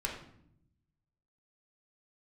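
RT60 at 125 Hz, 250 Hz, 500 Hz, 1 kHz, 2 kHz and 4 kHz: 1.5, 1.2, 0.75, 0.60, 0.55, 0.50 s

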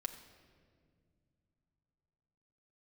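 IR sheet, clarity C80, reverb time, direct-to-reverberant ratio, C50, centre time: 11.0 dB, 2.1 s, 3.5 dB, 10.0 dB, 17 ms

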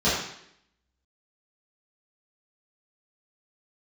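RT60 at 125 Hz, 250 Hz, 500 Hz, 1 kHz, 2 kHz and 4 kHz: 0.70, 0.80, 0.75, 0.70, 0.75, 0.70 s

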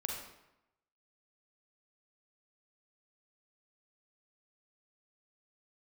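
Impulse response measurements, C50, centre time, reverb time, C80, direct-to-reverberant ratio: 2.0 dB, 50 ms, 0.90 s, 5.0 dB, -0.5 dB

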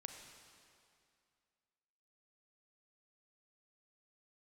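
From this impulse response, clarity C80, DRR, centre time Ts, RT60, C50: 6.0 dB, 4.5 dB, 52 ms, 2.4 s, 5.0 dB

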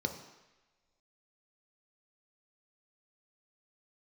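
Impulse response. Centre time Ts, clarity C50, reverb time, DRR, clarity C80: 20 ms, 8.5 dB, not exponential, 4.5 dB, 11.0 dB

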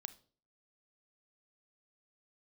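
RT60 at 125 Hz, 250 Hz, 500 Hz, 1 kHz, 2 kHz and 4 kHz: 0.55, 0.50, 0.50, 0.40, 0.30, 0.35 s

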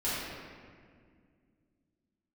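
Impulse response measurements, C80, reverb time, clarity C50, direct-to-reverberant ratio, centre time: -1.0 dB, 2.0 s, -3.5 dB, -12.5 dB, 0.132 s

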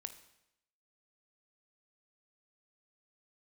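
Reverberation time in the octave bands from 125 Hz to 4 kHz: 0.80, 0.80, 0.85, 0.80, 0.80, 0.80 s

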